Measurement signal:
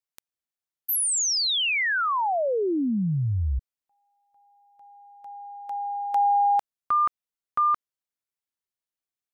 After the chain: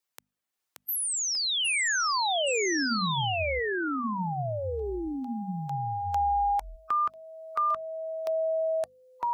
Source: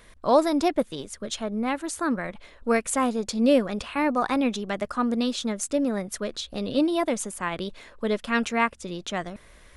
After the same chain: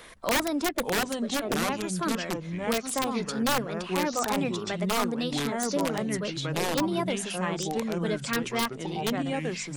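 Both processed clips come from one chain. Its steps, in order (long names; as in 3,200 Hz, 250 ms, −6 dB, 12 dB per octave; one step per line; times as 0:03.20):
spectral magnitudes quantised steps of 15 dB
low-shelf EQ 88 Hz −12 dB
wrap-around overflow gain 14 dB
delay with pitch and tempo change per echo 530 ms, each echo −4 semitones, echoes 2
mains-hum notches 50/100/150/200/250 Hz
multiband upward and downward compressor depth 40%
level −4 dB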